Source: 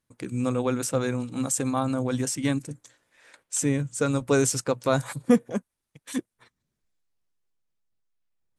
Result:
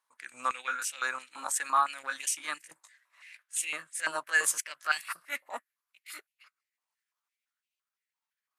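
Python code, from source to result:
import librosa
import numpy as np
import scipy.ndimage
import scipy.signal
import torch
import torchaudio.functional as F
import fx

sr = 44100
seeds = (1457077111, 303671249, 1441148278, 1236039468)

y = fx.pitch_glide(x, sr, semitones=4.5, runs='starting unshifted')
y = fx.transient(y, sr, attack_db=-9, sustain_db=-5)
y = fx.filter_held_highpass(y, sr, hz=5.9, low_hz=970.0, high_hz=2600.0)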